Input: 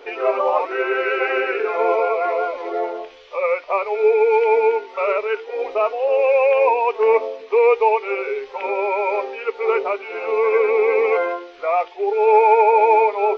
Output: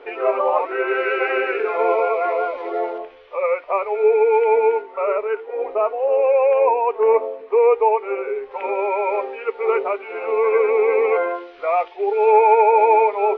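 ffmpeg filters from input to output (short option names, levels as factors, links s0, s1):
-af "asetnsamples=n=441:p=0,asendcmd='0.88 lowpass f 3400;2.98 lowpass f 2100;4.82 lowpass f 1500;8.51 lowpass f 2300;11.35 lowpass f 3600;12.3 lowpass f 2700',lowpass=2500"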